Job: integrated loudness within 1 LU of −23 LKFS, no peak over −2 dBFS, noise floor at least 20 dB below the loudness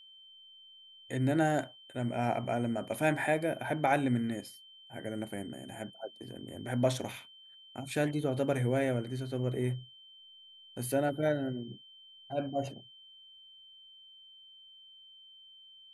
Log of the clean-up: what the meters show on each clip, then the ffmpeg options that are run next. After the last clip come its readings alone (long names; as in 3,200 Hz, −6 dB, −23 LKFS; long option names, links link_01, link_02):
interfering tone 3,100 Hz; level of the tone −53 dBFS; integrated loudness −33.0 LKFS; sample peak −15.0 dBFS; target loudness −23.0 LKFS
→ -af "bandreject=frequency=3100:width=30"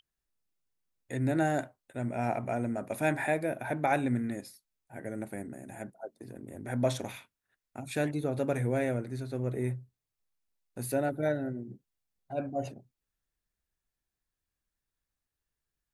interfering tone none found; integrated loudness −33.0 LKFS; sample peak −15.0 dBFS; target loudness −23.0 LKFS
→ -af "volume=10dB"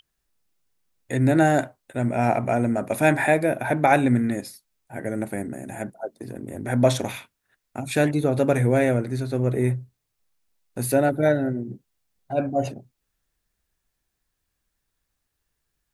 integrated loudness −23.0 LKFS; sample peak −5.0 dBFS; background noise floor −79 dBFS